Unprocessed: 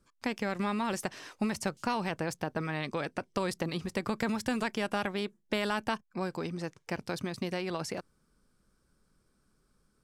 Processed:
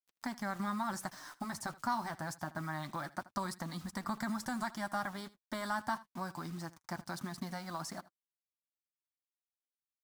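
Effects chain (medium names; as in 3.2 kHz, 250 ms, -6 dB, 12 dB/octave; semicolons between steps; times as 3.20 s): de-esser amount 75%; bass shelf 150 Hz -8.5 dB; in parallel at -3 dB: compression 12:1, threshold -45 dBFS, peak gain reduction 18.5 dB; on the sum: static phaser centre 1.1 kHz, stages 4; bit crusher 9-bit; flange 0.26 Hz, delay 3.9 ms, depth 4.3 ms, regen -39%; on a send: delay 79 ms -19.5 dB; on the sum: trim +2 dB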